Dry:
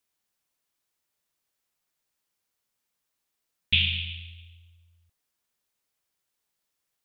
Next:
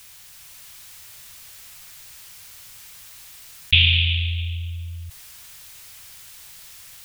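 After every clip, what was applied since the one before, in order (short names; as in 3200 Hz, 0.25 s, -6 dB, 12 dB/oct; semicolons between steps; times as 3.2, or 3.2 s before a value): AGC gain up to 4.5 dB; EQ curve 110 Hz 0 dB, 270 Hz -17 dB, 2400 Hz -3 dB; fast leveller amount 50%; gain +5 dB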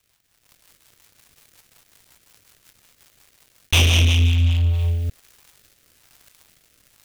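bell 13000 Hz -9 dB 3 oct; sample leveller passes 5; rotary speaker horn 5.5 Hz, later 1.1 Hz, at 4.24; gain -4.5 dB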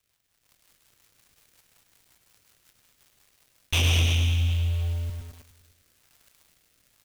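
feedback echo 0.103 s, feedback 59%, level -9 dB; lo-fi delay 0.116 s, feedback 35%, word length 6-bit, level -6 dB; gain -8 dB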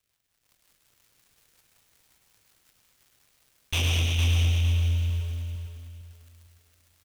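feedback echo 0.458 s, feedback 31%, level -5 dB; gain -3 dB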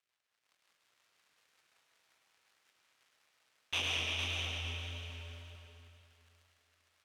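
band-pass 1500 Hz, Q 0.5; wow and flutter 29 cents; on a send at -5 dB: reverb RT60 1.2 s, pre-delay 85 ms; on the sum: gain -3.5 dB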